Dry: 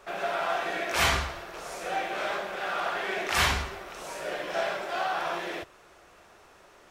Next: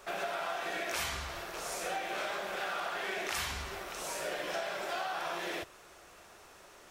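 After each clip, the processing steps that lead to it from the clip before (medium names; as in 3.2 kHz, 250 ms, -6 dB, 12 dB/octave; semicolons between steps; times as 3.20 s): treble shelf 4.6 kHz +8.5 dB; compression 12:1, threshold -31 dBFS, peak gain reduction 14 dB; trim -1.5 dB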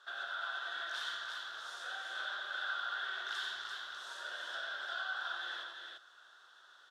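two resonant band-passes 2.3 kHz, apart 1.2 oct; on a send: multi-tap echo 90/343 ms -6/-4.5 dB; on the sum: trim +3 dB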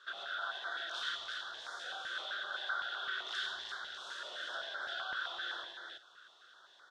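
distance through air 60 m; step-sequenced notch 7.8 Hz 780–2700 Hz; trim +4.5 dB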